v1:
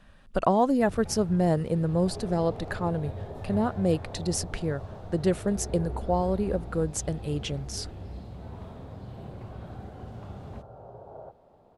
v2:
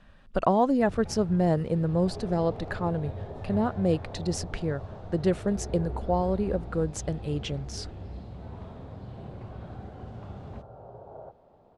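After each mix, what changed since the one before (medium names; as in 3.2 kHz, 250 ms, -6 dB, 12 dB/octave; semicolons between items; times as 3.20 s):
master: add distance through air 61 m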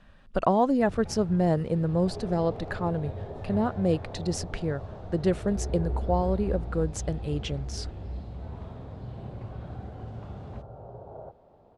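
second sound: add tilt EQ -1.5 dB/octave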